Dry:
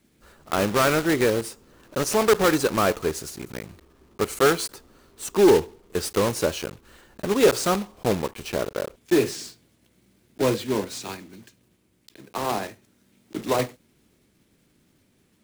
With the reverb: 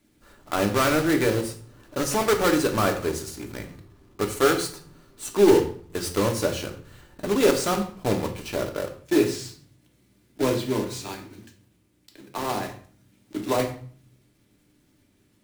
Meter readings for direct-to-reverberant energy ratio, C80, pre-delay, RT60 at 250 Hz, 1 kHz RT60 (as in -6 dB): 4.0 dB, 14.0 dB, 3 ms, 0.75 s, 0.50 s